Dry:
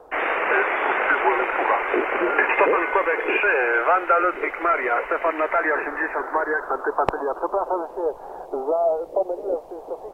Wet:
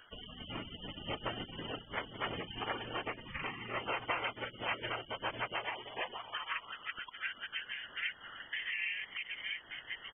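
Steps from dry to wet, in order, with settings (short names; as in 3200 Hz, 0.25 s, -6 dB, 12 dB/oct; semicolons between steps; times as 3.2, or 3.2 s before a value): compressor 5:1, threshold -25 dBFS, peak gain reduction 11.5 dB; 1.8–2.26 bell 1700 Hz -7 dB 2.7 oct; outdoor echo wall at 87 m, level -28 dB; inverted band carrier 3100 Hz; 3.11–3.77 high shelf 2300 Hz -10 dB; spectral gate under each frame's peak -25 dB weak; gain +11.5 dB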